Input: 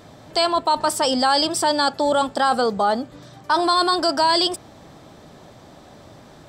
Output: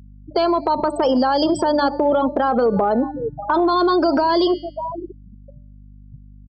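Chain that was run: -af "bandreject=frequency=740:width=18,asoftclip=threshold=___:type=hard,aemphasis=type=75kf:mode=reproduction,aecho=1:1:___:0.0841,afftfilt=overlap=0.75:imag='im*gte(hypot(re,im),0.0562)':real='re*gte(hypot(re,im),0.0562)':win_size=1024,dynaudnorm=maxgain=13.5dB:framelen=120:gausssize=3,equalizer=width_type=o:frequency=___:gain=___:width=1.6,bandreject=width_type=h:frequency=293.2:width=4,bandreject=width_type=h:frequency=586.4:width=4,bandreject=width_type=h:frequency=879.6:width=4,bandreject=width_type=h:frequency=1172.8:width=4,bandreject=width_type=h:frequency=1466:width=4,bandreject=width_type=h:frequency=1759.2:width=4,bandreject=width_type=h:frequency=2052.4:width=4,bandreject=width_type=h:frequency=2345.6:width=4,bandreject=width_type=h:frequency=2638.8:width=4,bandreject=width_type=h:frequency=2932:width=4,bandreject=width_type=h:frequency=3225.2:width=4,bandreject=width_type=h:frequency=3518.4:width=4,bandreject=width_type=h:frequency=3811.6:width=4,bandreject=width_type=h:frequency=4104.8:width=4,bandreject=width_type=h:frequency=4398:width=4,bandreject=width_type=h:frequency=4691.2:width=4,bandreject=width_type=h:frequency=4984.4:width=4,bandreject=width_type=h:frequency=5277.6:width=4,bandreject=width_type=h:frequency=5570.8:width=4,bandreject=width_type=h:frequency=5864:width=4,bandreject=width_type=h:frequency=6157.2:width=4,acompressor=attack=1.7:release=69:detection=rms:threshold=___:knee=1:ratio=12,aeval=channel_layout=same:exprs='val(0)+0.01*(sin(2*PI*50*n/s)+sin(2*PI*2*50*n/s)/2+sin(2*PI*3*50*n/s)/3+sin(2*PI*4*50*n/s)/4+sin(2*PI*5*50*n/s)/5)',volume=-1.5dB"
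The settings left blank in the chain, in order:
-10.5dB, 588, 390, 9, -11dB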